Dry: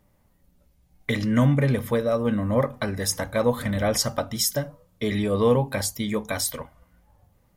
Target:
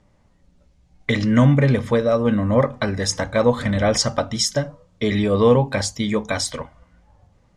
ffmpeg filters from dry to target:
ffmpeg -i in.wav -af "lowpass=frequency=7500:width=0.5412,lowpass=frequency=7500:width=1.3066,volume=5dB" out.wav

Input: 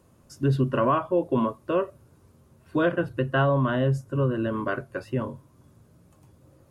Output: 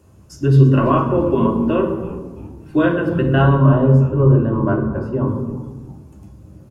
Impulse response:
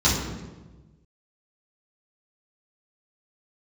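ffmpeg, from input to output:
-filter_complex "[0:a]asettb=1/sr,asplit=3[link_01][link_02][link_03];[link_01]atrim=end=3.554[link_04];[link_02]atrim=start=3.55:end=5.28,asetpts=PTS-STARTPTS,afade=type=in:duration=0.004:curve=qsin,afade=type=out:start_time=1.726:duration=0.004:curve=qsin,highshelf=frequency=1500:width_type=q:width=1.5:gain=-11.5[link_05];[link_03]atrim=start=5.276[link_06];[link_04][link_05]acrossfade=duration=0.004:curve1=hsin:curve2=qsin[link_07];[link_07][link_06]acrossfade=duration=0.004:curve1=qsin:curve2=hsin,asplit=5[link_08][link_09][link_10][link_11][link_12];[link_09]adelay=335,afreqshift=-110,volume=-18dB[link_13];[link_10]adelay=670,afreqshift=-220,volume=-24.4dB[link_14];[link_11]adelay=1005,afreqshift=-330,volume=-30.8dB[link_15];[link_12]adelay=1340,afreqshift=-440,volume=-37.1dB[link_16];[link_08][link_13][link_14][link_15][link_16]amix=inputs=5:normalize=0,asplit=2[link_17][link_18];[1:a]atrim=start_sample=2205[link_19];[link_18][link_19]afir=irnorm=-1:irlink=0,volume=-18.5dB[link_20];[link_17][link_20]amix=inputs=2:normalize=0,volume=4dB"

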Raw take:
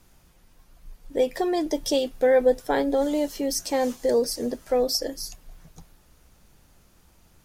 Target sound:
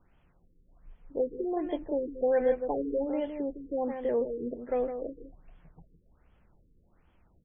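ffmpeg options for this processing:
ffmpeg -i in.wav -af "aecho=1:1:160:0.398,afftfilt=real='re*lt(b*sr/1024,480*pow(3500/480,0.5+0.5*sin(2*PI*1.3*pts/sr)))':imag='im*lt(b*sr/1024,480*pow(3500/480,0.5+0.5*sin(2*PI*1.3*pts/sr)))':win_size=1024:overlap=0.75,volume=-7dB" out.wav

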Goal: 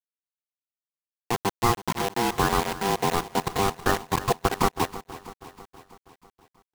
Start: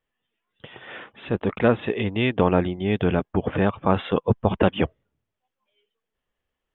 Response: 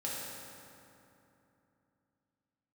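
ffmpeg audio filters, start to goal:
-filter_complex "[0:a]afftfilt=real='re*gte(hypot(re,im),0.2)':imag='im*gte(hypot(re,im),0.2)':win_size=1024:overlap=0.75,highshelf=frequency=2100:width_type=q:width=1.5:gain=-12.5,asplit=2[link_01][link_02];[link_02]acompressor=threshold=-32dB:ratio=12,volume=2.5dB[link_03];[link_01][link_03]amix=inputs=2:normalize=0,aeval=exprs='val(0)*sin(2*PI*590*n/s)':channel_layout=same,acrusher=bits=3:mix=0:aa=0.000001,asplit=2[link_04][link_05];[link_05]aecho=0:1:323|646|969|1292|1615|1938:0.158|0.0935|0.0552|0.0326|0.0192|0.0113[link_06];[link_04][link_06]amix=inputs=2:normalize=0,volume=-2.5dB"

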